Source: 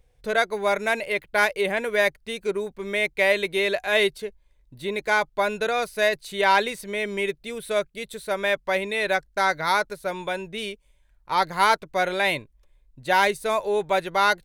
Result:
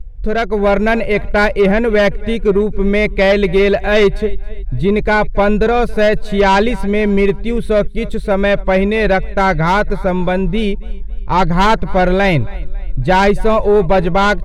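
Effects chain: RIAA curve playback; on a send: feedback delay 274 ms, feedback 42%, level -23 dB; on the sum: sine folder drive 6 dB, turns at -6.5 dBFS; level rider; bass shelf 130 Hz +11 dB; trim -5.5 dB

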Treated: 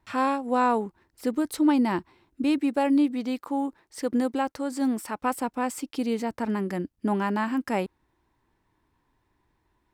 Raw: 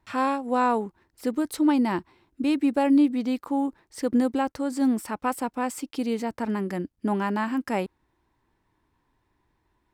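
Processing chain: 2.58–5.21 s: bass shelf 220 Hz -7 dB

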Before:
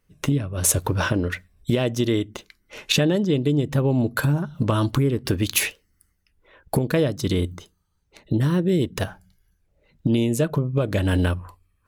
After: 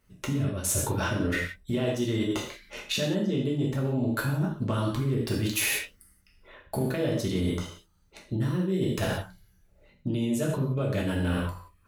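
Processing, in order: gated-style reverb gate 210 ms falling, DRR -3 dB; reverse; compression 6:1, threshold -25 dBFS, peak gain reduction 14.5 dB; reverse

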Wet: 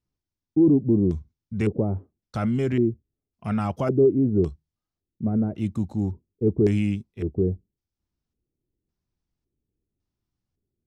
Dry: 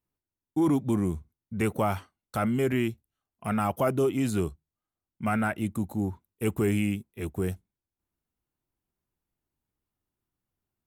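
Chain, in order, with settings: LFO low-pass square 0.9 Hz 420–5400 Hz; bass shelf 320 Hz +10.5 dB; trim -4 dB

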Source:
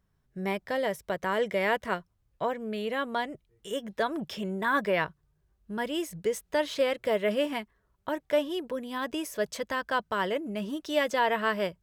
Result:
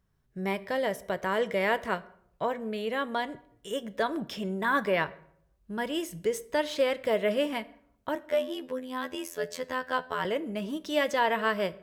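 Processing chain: 8.15–10.25 s: robot voice 85.3 Hz; reverberation RT60 0.65 s, pre-delay 7 ms, DRR 14.5 dB

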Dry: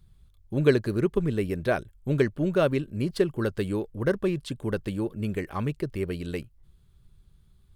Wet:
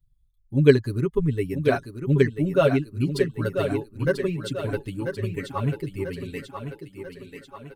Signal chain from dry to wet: expander on every frequency bin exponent 1.5; comb 7.2 ms, depth 81%; thinning echo 990 ms, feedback 55%, high-pass 170 Hz, level -7 dB; trim +2.5 dB

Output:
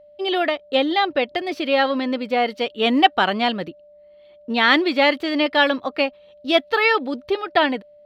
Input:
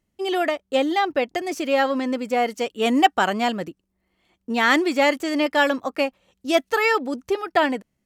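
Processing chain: resonant high shelf 5.3 kHz -11 dB, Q 3; whistle 590 Hz -47 dBFS; trim +1 dB

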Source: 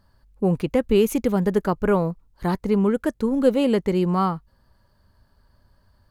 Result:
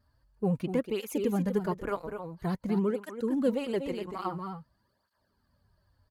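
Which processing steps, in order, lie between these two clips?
delay 243 ms -8.5 dB; vibrato 14 Hz 55 cents; cancelling through-zero flanger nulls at 0.49 Hz, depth 6 ms; trim -6.5 dB

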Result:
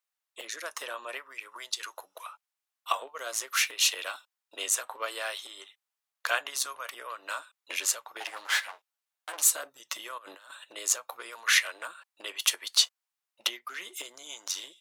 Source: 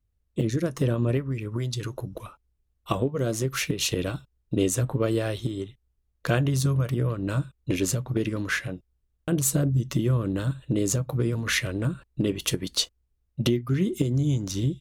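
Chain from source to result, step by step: 8.20–9.42 s: comb filter that takes the minimum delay 9.6 ms; high-pass 820 Hz 24 dB/octave; 10.18–10.64 s: compressor with a negative ratio -53 dBFS, ratio -1; trim +3 dB

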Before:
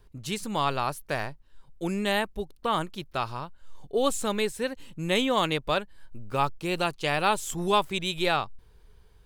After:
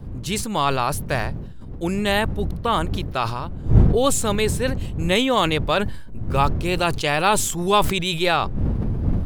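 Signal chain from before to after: wind noise 120 Hz -32 dBFS; decay stretcher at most 50 dB/s; trim +5.5 dB

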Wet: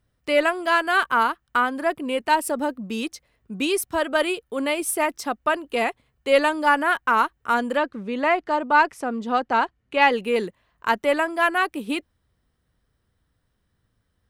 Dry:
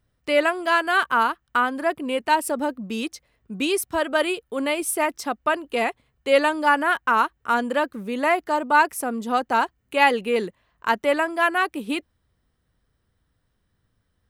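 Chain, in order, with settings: 7.77–10.12 s: low-pass 4.9 kHz 12 dB/octave; Chebyshev shaper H 6 -38 dB, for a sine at -2.5 dBFS

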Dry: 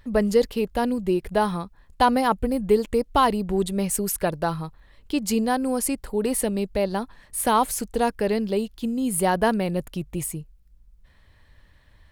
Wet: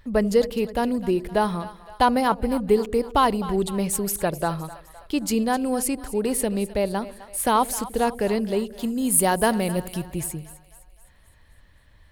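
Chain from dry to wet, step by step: 8.79–10.04 s: treble shelf 5.2 kHz +10 dB; two-band feedback delay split 590 Hz, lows 84 ms, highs 257 ms, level -15.5 dB

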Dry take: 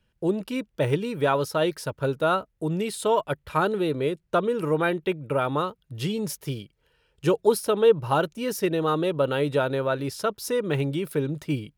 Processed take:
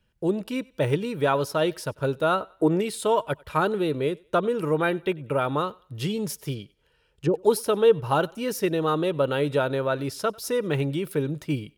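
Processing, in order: 2.41–2.80 s: time-frequency box 290–2400 Hz +9 dB; 6.54–7.34 s: low-pass that closes with the level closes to 490 Hz, closed at -21.5 dBFS; thinning echo 95 ms, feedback 34%, high-pass 420 Hz, level -24 dB

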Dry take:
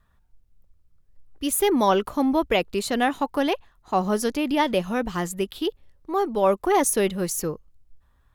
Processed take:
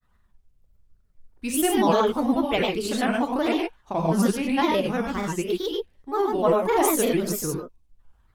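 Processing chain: gated-style reverb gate 140 ms rising, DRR 0.5 dB; granulator, spray 22 ms, pitch spread up and down by 3 st; trim -2 dB

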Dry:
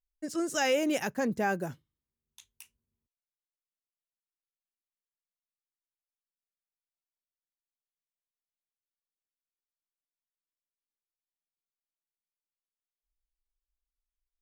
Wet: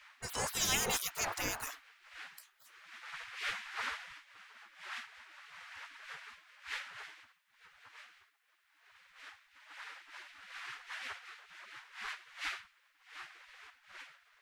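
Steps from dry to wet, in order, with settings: wind noise 420 Hz -38 dBFS; spectral gate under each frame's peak -25 dB weak; wavefolder -33.5 dBFS; trim +11 dB

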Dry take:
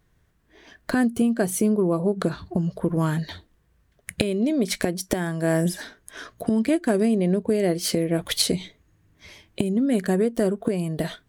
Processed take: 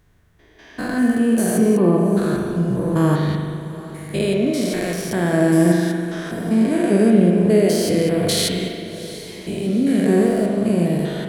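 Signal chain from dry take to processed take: spectrogram pixelated in time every 200 ms; echo that smears into a reverb 766 ms, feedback 46%, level -15 dB; spring tank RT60 1.9 s, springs 40 ms, chirp 70 ms, DRR 1.5 dB; trim +7 dB

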